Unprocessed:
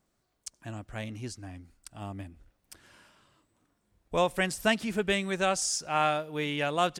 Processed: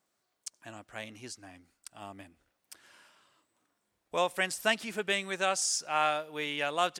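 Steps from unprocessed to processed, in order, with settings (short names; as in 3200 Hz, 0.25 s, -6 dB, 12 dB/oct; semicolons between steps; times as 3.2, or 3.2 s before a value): HPF 610 Hz 6 dB/oct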